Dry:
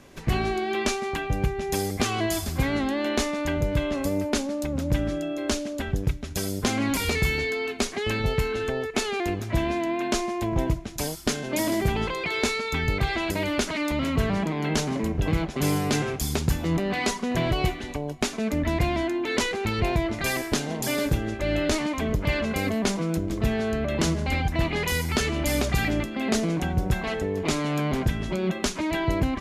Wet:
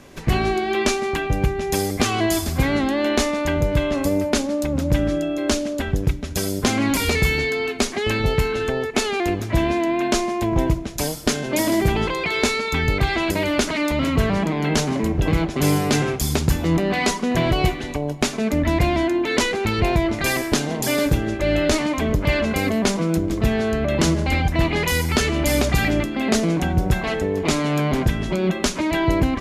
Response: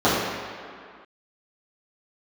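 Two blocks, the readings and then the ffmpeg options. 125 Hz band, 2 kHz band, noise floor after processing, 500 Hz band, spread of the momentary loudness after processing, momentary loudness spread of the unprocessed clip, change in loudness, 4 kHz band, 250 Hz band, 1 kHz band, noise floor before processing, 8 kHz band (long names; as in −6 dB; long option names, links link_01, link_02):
+5.0 dB, +5.0 dB, −29 dBFS, +5.5 dB, 3 LU, 3 LU, +5.5 dB, +5.0 dB, +5.5 dB, +5.0 dB, −35 dBFS, +5.0 dB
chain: -filter_complex "[0:a]asplit=2[link_01][link_02];[1:a]atrim=start_sample=2205,asetrate=34839,aresample=44100[link_03];[link_02][link_03]afir=irnorm=-1:irlink=0,volume=-42.5dB[link_04];[link_01][link_04]amix=inputs=2:normalize=0,volume=5dB"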